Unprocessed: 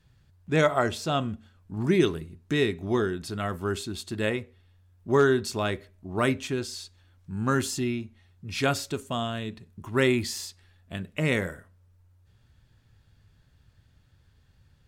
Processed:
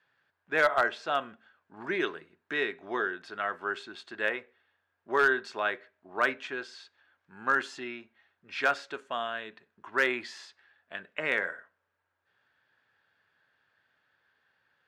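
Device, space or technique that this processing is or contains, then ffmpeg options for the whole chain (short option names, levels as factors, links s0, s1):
megaphone: -af "highpass=610,lowpass=2700,equalizer=f=1600:t=o:w=0.34:g=8,asoftclip=type=hard:threshold=0.168"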